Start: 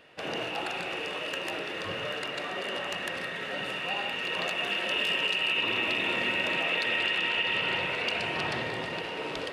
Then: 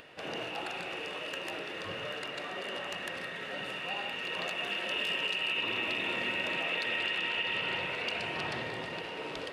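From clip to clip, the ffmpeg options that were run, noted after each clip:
-af "acompressor=mode=upward:threshold=-41dB:ratio=2.5,volume=-4.5dB"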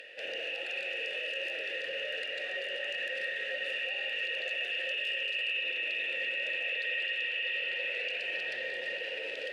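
-filter_complex "[0:a]alimiter=level_in=7.5dB:limit=-24dB:level=0:latency=1:release=25,volume=-7.5dB,asplit=3[a][b][c];[a]bandpass=f=530:t=q:w=8,volume=0dB[d];[b]bandpass=f=1.84k:t=q:w=8,volume=-6dB[e];[c]bandpass=f=2.48k:t=q:w=8,volume=-9dB[f];[d][e][f]amix=inputs=3:normalize=0,crystalizer=i=9:c=0,volume=6dB"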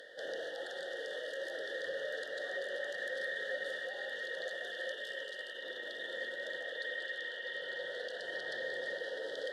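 -af "asuperstop=centerf=2400:order=12:qfactor=1.9,volume=1dB"

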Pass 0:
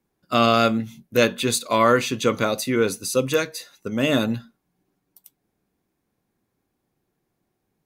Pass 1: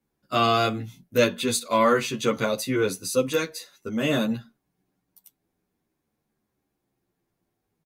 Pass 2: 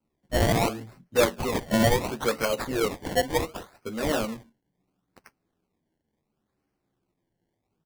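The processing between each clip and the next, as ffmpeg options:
-filter_complex "[0:a]asplit=2[a][b];[b]adelay=10.6,afreqshift=-0.48[c];[a][c]amix=inputs=2:normalize=1"
-filter_complex "[0:a]acrossover=split=330[a][b];[a]acompressor=threshold=-39dB:ratio=6[c];[b]acrusher=samples=24:mix=1:aa=0.000001:lfo=1:lforange=24:lforate=0.71[d];[c][d]amix=inputs=2:normalize=0"

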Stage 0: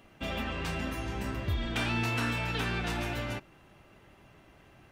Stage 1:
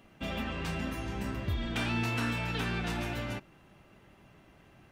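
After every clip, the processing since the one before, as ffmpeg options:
-af "equalizer=f=190:t=o:w=0.92:g=4,volume=-2dB"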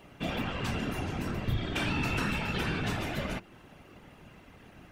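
-filter_complex "[0:a]asplit=2[a][b];[b]acompressor=threshold=-41dB:ratio=6,volume=1dB[c];[a][c]amix=inputs=2:normalize=0,afftfilt=real='hypot(re,im)*cos(2*PI*random(0))':imag='hypot(re,im)*sin(2*PI*random(1))':win_size=512:overlap=0.75,volume=5dB"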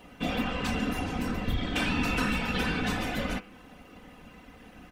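-af "aecho=1:1:4:0.59,bandreject=f=99.43:t=h:w=4,bandreject=f=198.86:t=h:w=4,bandreject=f=298.29:t=h:w=4,bandreject=f=397.72:t=h:w=4,bandreject=f=497.15:t=h:w=4,bandreject=f=596.58:t=h:w=4,bandreject=f=696.01:t=h:w=4,bandreject=f=795.44:t=h:w=4,bandreject=f=894.87:t=h:w=4,bandreject=f=994.3:t=h:w=4,bandreject=f=1.09373k:t=h:w=4,bandreject=f=1.19316k:t=h:w=4,bandreject=f=1.29259k:t=h:w=4,bandreject=f=1.39202k:t=h:w=4,bandreject=f=1.49145k:t=h:w=4,bandreject=f=1.59088k:t=h:w=4,bandreject=f=1.69031k:t=h:w=4,bandreject=f=1.78974k:t=h:w=4,bandreject=f=1.88917k:t=h:w=4,bandreject=f=1.9886k:t=h:w=4,bandreject=f=2.08803k:t=h:w=4,bandreject=f=2.18746k:t=h:w=4,bandreject=f=2.28689k:t=h:w=4,bandreject=f=2.38632k:t=h:w=4,bandreject=f=2.48575k:t=h:w=4,bandreject=f=2.58518k:t=h:w=4,bandreject=f=2.68461k:t=h:w=4,bandreject=f=2.78404k:t=h:w=4,bandreject=f=2.88347k:t=h:w=4,bandreject=f=2.9829k:t=h:w=4,bandreject=f=3.08233k:t=h:w=4,bandreject=f=3.18176k:t=h:w=4,bandreject=f=3.28119k:t=h:w=4,bandreject=f=3.38062k:t=h:w=4,volume=2dB"

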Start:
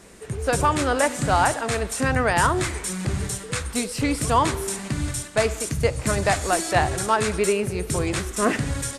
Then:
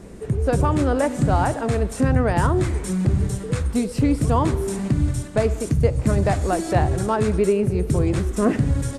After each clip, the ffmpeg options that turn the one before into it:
-filter_complex "[0:a]tiltshelf=f=710:g=8.5,asplit=2[a][b];[b]acompressor=threshold=-26dB:ratio=6,volume=3dB[c];[a][c]amix=inputs=2:normalize=0,volume=-4dB"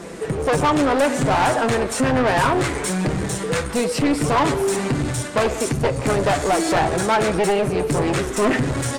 -filter_complex "[0:a]aeval=exprs='clip(val(0),-1,0.075)':c=same,flanger=delay=5.8:depth=2.5:regen=49:speed=0.28:shape=triangular,asplit=2[a][b];[b]highpass=f=720:p=1,volume=24dB,asoftclip=type=tanh:threshold=-8.5dB[c];[a][c]amix=inputs=2:normalize=0,lowpass=f=5.9k:p=1,volume=-6dB"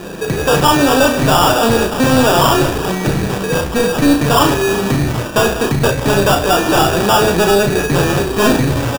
-filter_complex "[0:a]acrusher=samples=21:mix=1:aa=0.000001,asplit=2[a][b];[b]adelay=35,volume=-6dB[c];[a][c]amix=inputs=2:normalize=0,volume=5.5dB"

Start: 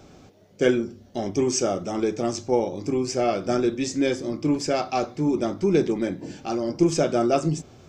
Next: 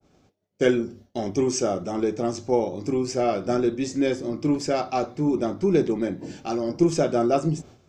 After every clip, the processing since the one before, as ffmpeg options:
-af "agate=range=-33dB:threshold=-40dB:ratio=3:detection=peak,adynamicequalizer=threshold=0.01:dfrequency=1700:dqfactor=0.7:tfrequency=1700:tqfactor=0.7:attack=5:release=100:ratio=0.375:range=2.5:mode=cutabove:tftype=highshelf"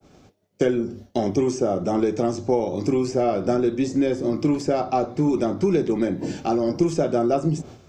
-filter_complex "[0:a]acrossover=split=88|1100[a][b][c];[a]acompressor=threshold=-53dB:ratio=4[d];[b]acompressor=threshold=-27dB:ratio=4[e];[c]acompressor=threshold=-48dB:ratio=4[f];[d][e][f]amix=inputs=3:normalize=0,volume=8.5dB"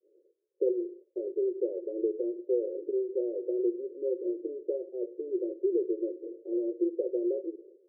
-af "asuperpass=centerf=430:order=12:qfactor=2,volume=-6dB"

